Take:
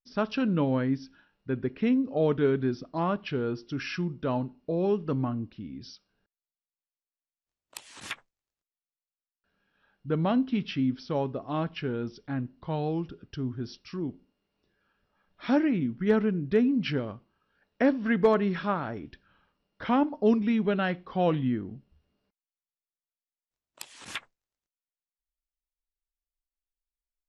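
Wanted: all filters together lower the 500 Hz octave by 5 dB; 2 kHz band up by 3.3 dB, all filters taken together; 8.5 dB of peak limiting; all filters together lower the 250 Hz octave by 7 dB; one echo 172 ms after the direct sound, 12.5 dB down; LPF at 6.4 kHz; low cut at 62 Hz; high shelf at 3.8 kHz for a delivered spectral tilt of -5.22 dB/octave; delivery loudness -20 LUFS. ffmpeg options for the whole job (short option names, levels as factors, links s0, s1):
-af "highpass=62,lowpass=6400,equalizer=f=250:t=o:g=-7.5,equalizer=f=500:t=o:g=-4,equalizer=f=2000:t=o:g=6.5,highshelf=f=3800:g=-7.5,alimiter=limit=0.0668:level=0:latency=1,aecho=1:1:172:0.237,volume=5.31"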